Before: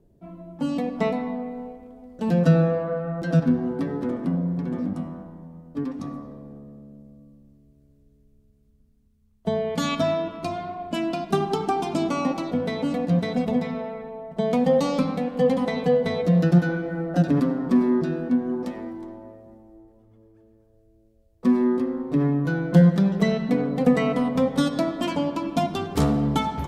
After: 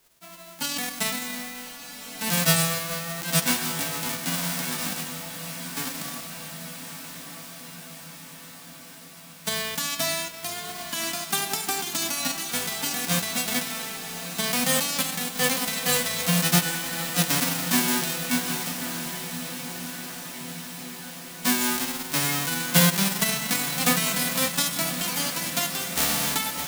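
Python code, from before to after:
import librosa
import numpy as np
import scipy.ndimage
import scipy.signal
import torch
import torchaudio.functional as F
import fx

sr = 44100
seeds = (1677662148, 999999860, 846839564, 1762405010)

y = fx.envelope_flatten(x, sr, power=0.1)
y = fx.echo_diffused(y, sr, ms=1235, feedback_pct=66, wet_db=-10.0)
y = F.gain(torch.from_numpy(y), -4.0).numpy()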